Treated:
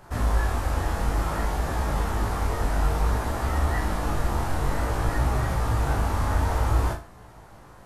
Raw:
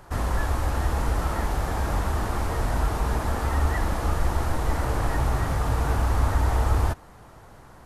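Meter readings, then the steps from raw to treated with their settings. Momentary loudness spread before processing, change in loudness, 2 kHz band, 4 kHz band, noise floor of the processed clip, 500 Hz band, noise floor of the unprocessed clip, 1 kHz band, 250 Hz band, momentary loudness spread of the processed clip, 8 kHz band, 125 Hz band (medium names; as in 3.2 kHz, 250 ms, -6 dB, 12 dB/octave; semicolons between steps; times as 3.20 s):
4 LU, -0.5 dB, 0.0 dB, 0.0 dB, -48 dBFS, 0.0 dB, -48 dBFS, 0.0 dB, 0.0 dB, 3 LU, 0.0 dB, -0.5 dB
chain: flutter echo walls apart 6.3 m, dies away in 0.32 s; chorus 0.56 Hz, delay 16 ms, depth 6.6 ms; trim +2 dB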